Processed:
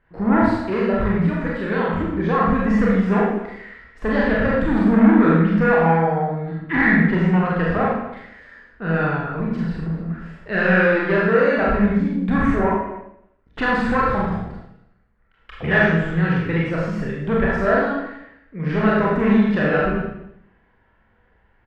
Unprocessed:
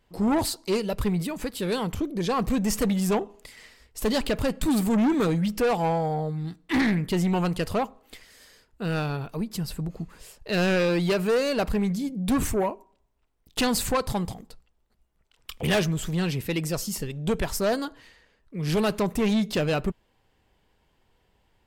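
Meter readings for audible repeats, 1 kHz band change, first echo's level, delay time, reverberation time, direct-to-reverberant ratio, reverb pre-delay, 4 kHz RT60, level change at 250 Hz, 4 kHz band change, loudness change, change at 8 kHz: 2, +8.5 dB, -3.5 dB, 43 ms, 0.80 s, -5.5 dB, 27 ms, 0.75 s, +7.5 dB, -6.0 dB, +7.0 dB, under -20 dB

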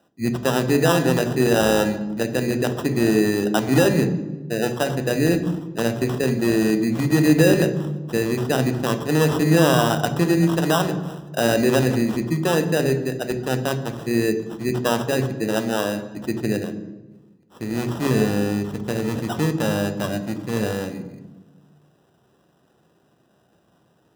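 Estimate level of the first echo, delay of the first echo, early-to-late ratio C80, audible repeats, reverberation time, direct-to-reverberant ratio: no echo, no echo, 13.5 dB, no echo, 1.2 s, 8.0 dB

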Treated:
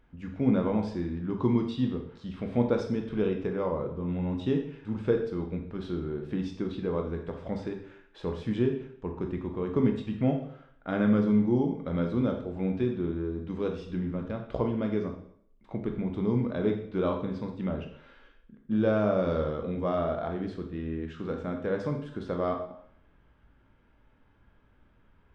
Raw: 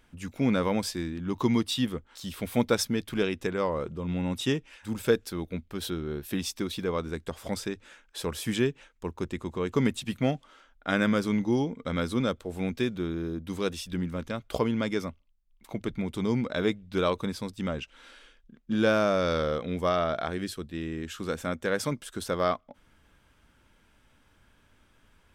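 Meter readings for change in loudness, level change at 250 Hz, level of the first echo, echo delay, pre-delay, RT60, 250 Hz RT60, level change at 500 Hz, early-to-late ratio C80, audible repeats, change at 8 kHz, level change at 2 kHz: -0.5 dB, +1.0 dB, no echo, no echo, 7 ms, 0.65 s, 0.65 s, -0.5 dB, 10.5 dB, no echo, under -20 dB, -8.5 dB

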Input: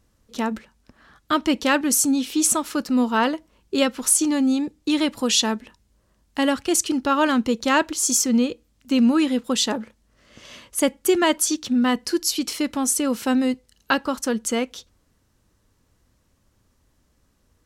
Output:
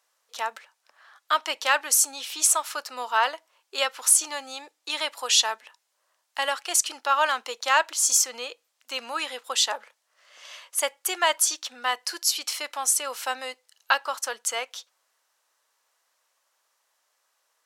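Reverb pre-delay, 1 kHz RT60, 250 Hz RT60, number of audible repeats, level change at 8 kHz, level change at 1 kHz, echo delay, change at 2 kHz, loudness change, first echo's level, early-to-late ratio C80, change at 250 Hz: no reverb, no reverb, no reverb, no echo, 0.0 dB, -0.5 dB, no echo, 0.0 dB, -3.0 dB, no echo, no reverb, -29.5 dB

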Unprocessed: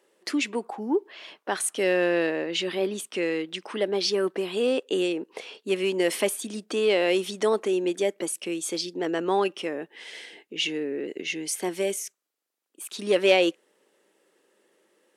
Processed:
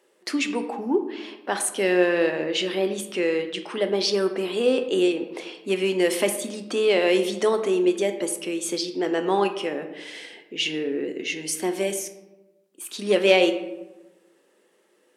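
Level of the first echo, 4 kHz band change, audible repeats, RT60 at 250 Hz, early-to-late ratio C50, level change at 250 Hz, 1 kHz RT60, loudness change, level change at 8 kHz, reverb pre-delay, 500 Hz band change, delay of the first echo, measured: no echo, +2.0 dB, no echo, 1.3 s, 10.0 dB, +3.5 dB, 1.0 s, +2.5 dB, +2.0 dB, 6 ms, +2.5 dB, no echo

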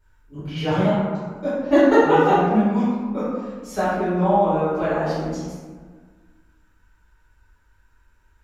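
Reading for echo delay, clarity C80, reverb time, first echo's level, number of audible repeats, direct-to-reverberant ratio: no echo, 0.5 dB, 1.5 s, no echo, no echo, -14.0 dB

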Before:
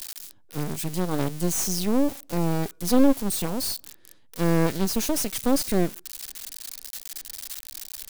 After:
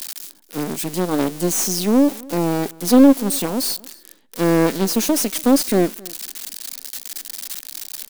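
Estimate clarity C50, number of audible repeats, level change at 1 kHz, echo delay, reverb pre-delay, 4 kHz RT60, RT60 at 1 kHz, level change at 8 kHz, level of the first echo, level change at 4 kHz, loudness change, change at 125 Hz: no reverb, 1, +6.5 dB, 265 ms, no reverb, no reverb, no reverb, +6.0 dB, -23.5 dB, +6.0 dB, +7.0 dB, +1.5 dB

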